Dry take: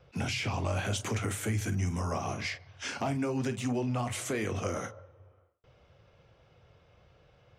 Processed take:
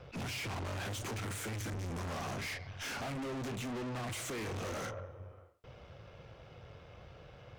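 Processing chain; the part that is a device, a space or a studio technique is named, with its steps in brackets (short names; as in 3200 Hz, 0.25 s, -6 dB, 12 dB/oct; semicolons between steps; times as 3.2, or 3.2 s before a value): tube preamp driven hard (tube stage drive 48 dB, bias 0.5; high shelf 6300 Hz -5 dB); gain +10 dB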